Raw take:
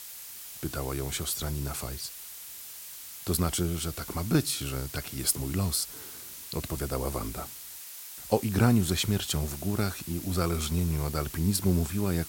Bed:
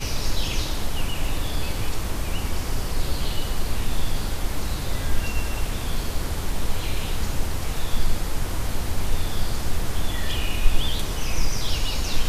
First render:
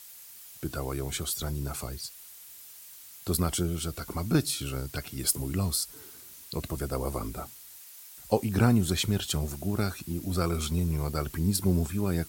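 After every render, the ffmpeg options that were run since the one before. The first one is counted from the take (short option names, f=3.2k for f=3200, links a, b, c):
-af "afftdn=nr=7:nf=-44"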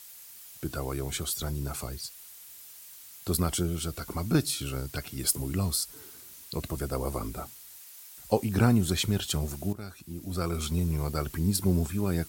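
-filter_complex "[0:a]asplit=2[a][b];[a]atrim=end=9.73,asetpts=PTS-STARTPTS,afade=t=out:st=9.726:d=0.004:c=hsin:silence=0.16788[c];[b]atrim=start=9.73,asetpts=PTS-STARTPTS,afade=t=in:d=1.04:silence=0.16788[d];[c][d]concat=n=2:v=0:a=1"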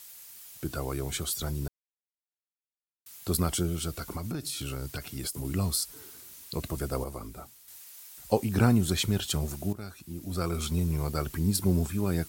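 -filter_complex "[0:a]asettb=1/sr,asplit=3[a][b][c];[a]atrim=end=4.074[d];[b]atrim=start=4.07:end=5.45,asetpts=PTS-STARTPTS,afade=t=in:d=0.004:c=qsin,afade=t=out:st=1.376:d=0.004:c=qsin,acompressor=threshold=-30dB:ratio=8:attack=3.2:release=140:knee=1:detection=peak[e];[c]atrim=start=5.446[f];[d][e]acrossfade=d=0.004:c1=hsin:c2=qsin[g];[g][f]acrossfade=d=0.004:c1=qsin:c2=hsin,asplit=5[h][i][j][k][l];[h]atrim=end=1.68,asetpts=PTS-STARTPTS,afade=t=out:st=1.676:d=0.004:c=hsin[m];[i]atrim=start=1.68:end=3.06,asetpts=PTS-STARTPTS,volume=0[n];[j]atrim=start=3.06:end=7.042,asetpts=PTS-STARTPTS,afade=t=in:d=0.004:c=hsin[o];[k]atrim=start=7.038:end=7.682,asetpts=PTS-STARTPTS,volume=-6.5dB[p];[l]atrim=start=7.678[q];[m][n][o]concat=n=3:v=0:a=1[r];[r][p]acrossfade=d=0.004:c1=hsin:c2=hsin[s];[s][q]acrossfade=d=0.004:c1=hsin:c2=hsin"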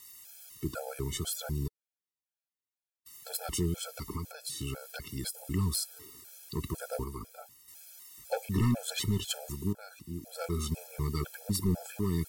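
-af "asoftclip=type=hard:threshold=-22dB,afftfilt=real='re*gt(sin(2*PI*2*pts/sr)*(1-2*mod(floor(b*sr/1024/440),2)),0)':imag='im*gt(sin(2*PI*2*pts/sr)*(1-2*mod(floor(b*sr/1024/440),2)),0)':win_size=1024:overlap=0.75"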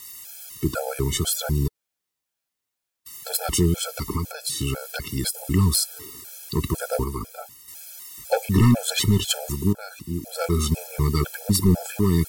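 -af "volume=11dB"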